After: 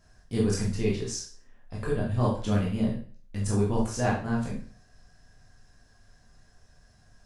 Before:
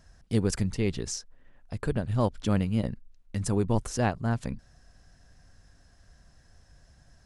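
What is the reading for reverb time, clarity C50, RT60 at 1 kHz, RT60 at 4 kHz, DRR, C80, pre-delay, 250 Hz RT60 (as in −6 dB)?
0.45 s, 5.5 dB, 0.45 s, 0.40 s, −4.5 dB, 10.5 dB, 7 ms, 0.45 s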